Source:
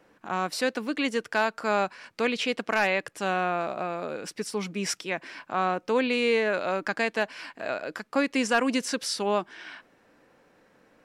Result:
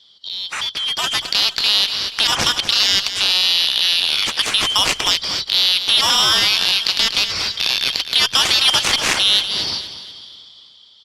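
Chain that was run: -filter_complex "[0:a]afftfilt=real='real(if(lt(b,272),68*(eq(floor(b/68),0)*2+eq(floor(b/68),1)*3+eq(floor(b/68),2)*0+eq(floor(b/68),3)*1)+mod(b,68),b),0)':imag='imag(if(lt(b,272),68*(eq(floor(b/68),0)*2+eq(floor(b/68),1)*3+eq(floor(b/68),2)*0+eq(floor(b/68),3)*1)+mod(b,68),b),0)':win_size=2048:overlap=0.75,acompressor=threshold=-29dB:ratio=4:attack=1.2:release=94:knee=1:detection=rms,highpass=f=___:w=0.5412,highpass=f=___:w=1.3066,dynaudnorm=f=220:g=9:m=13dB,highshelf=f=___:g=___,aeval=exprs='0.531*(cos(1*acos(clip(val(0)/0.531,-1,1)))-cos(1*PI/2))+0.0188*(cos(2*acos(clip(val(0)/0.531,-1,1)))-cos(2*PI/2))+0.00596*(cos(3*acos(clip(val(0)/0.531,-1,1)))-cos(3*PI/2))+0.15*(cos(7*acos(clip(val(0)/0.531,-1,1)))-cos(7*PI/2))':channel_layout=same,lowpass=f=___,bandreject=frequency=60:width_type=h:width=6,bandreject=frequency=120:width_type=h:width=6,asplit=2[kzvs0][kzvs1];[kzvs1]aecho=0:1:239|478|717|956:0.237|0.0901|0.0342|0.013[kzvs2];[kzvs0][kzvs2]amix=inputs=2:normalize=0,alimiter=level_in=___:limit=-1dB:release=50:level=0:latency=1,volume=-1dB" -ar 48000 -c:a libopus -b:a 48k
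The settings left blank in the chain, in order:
53, 53, 3600, 4, 5500, 9.5dB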